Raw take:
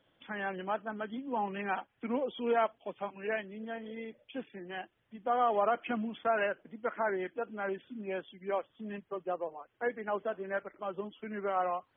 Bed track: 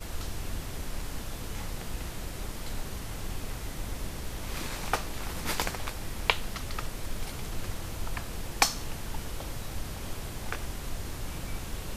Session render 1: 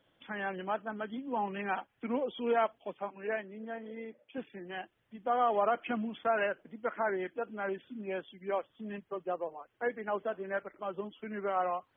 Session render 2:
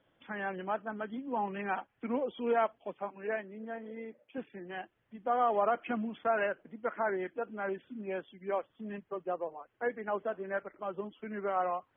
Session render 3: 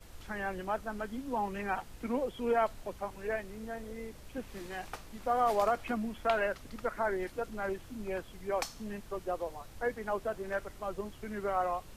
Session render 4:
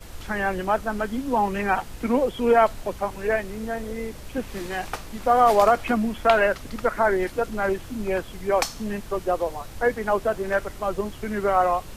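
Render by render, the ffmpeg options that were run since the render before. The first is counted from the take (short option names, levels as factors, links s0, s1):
-filter_complex "[0:a]asettb=1/sr,asplit=3[s0][s1][s2];[s0]atrim=end=2.974[s3];[s1]atrim=start=2.97:end=4.38,asetpts=PTS-STARTPTS,afade=t=in:d=0.004:c=qsin,afade=t=out:st=1.406:d=0.004:c=qsin,highpass=180,lowpass=2200[s4];[s2]atrim=start=4.376[s5];[s3][s4]acrossfade=d=0.004:c1=hsin:c2=qsin[s6];[s6][s5]acrossfade=d=0.004:c1=qsin:c2=hsin"
-af "lowpass=2700"
-filter_complex "[1:a]volume=0.188[s0];[0:a][s0]amix=inputs=2:normalize=0"
-af "volume=3.76"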